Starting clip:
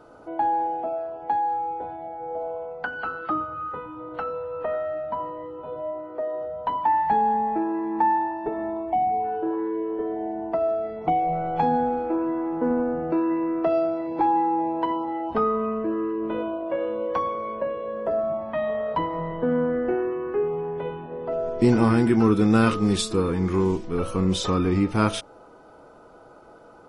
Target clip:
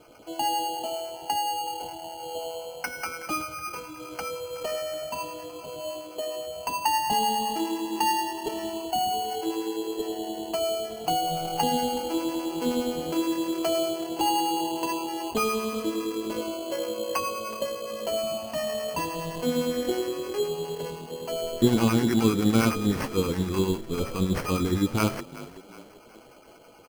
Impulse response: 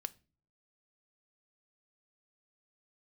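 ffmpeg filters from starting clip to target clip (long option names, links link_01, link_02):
-filter_complex "[0:a]acrossover=split=700[link_01][link_02];[link_01]aeval=exprs='val(0)*(1-0.7/2+0.7/2*cos(2*PI*9.7*n/s))':channel_layout=same[link_03];[link_02]aeval=exprs='val(0)*(1-0.7/2-0.7/2*cos(2*PI*9.7*n/s))':channel_layout=same[link_04];[link_03][link_04]amix=inputs=2:normalize=0,asplit=5[link_05][link_06][link_07][link_08][link_09];[link_06]adelay=372,afreqshift=38,volume=-17.5dB[link_10];[link_07]adelay=744,afreqshift=76,volume=-24.2dB[link_11];[link_08]adelay=1116,afreqshift=114,volume=-31dB[link_12];[link_09]adelay=1488,afreqshift=152,volume=-37.7dB[link_13];[link_05][link_10][link_11][link_12][link_13]amix=inputs=5:normalize=0,acrusher=samples=12:mix=1:aa=0.000001"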